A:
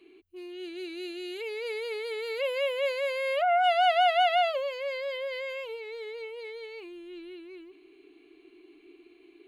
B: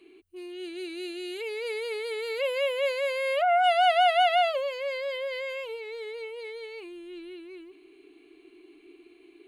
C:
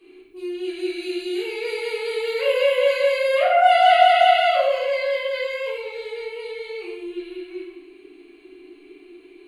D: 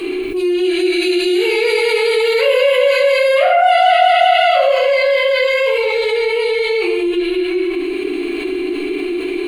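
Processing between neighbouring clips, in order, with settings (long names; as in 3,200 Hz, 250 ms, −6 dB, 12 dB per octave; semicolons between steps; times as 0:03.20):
parametric band 9,000 Hz +9 dB 0.31 octaves; level +1.5 dB
rectangular room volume 380 cubic metres, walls mixed, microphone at 3.7 metres; level −3 dB
envelope flattener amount 70%; level +1 dB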